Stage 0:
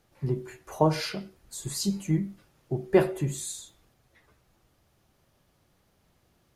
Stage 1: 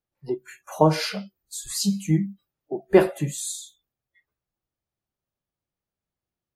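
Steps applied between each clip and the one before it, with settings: spectral noise reduction 28 dB; trim +5 dB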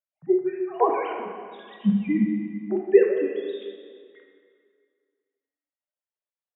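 formants replaced by sine waves; plate-style reverb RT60 2.1 s, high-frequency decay 0.8×, DRR 1.5 dB; trim -1 dB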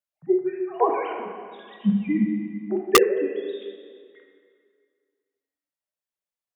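integer overflow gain 7 dB

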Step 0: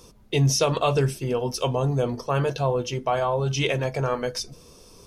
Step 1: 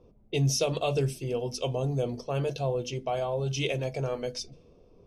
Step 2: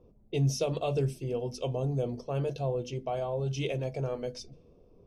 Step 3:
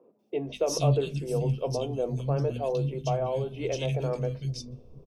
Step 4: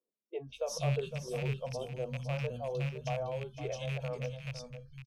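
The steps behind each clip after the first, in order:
high-order bell 1.3 kHz -9 dB 1.3 oct; hum notches 50/100/150/200/250 Hz; level-controlled noise filter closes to 1.1 kHz, open at -22.5 dBFS; trim -5 dB
tilt shelf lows +3.5 dB, about 1.1 kHz; trim -4.5 dB
three bands offset in time mids, highs, lows 190/450 ms, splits 240/2300 Hz; trim +4 dB
rattle on loud lows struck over -27 dBFS, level -23 dBFS; spectral noise reduction 25 dB; delay 509 ms -10 dB; trim -8 dB

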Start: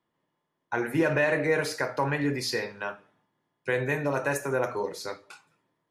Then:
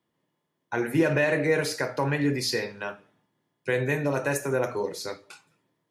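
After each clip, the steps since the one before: high-pass 48 Hz; peaking EQ 1.1 kHz -5.5 dB 1.8 oct; trim +3.5 dB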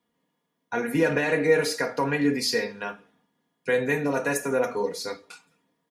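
comb 4.2 ms, depth 69%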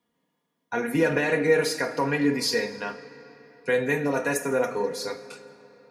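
reverberation RT60 3.7 s, pre-delay 45 ms, DRR 14.5 dB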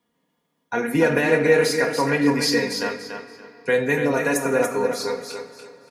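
feedback delay 287 ms, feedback 25%, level -6.5 dB; trim +3.5 dB

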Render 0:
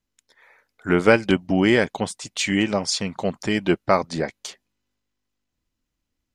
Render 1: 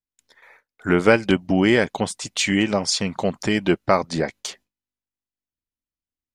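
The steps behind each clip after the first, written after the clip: gate with hold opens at -43 dBFS; in parallel at -1 dB: compression, threshold -25 dBFS, peak gain reduction 14.5 dB; on the sum: trim -1.5 dB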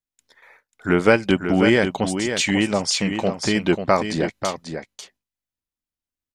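delay 541 ms -7.5 dB

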